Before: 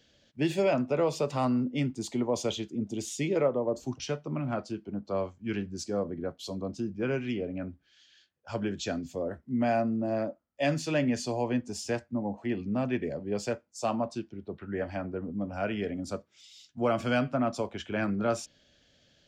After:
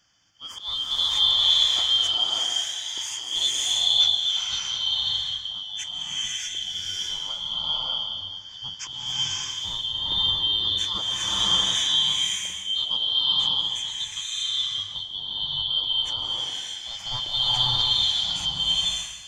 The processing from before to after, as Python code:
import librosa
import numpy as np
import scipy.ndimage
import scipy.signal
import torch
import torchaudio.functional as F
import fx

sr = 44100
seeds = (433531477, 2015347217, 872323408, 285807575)

y = fx.band_shuffle(x, sr, order='2413')
y = fx.graphic_eq_31(y, sr, hz=(100, 250, 400, 6300), db=(11, -7, -11, 7))
y = fx.auto_swell(y, sr, attack_ms=220.0)
y = fx.filter_lfo_notch(y, sr, shape='square', hz=0.84, low_hz=350.0, high_hz=3900.0, q=2.5)
y = fx.rev_bloom(y, sr, seeds[0], attack_ms=600, drr_db=-8.0)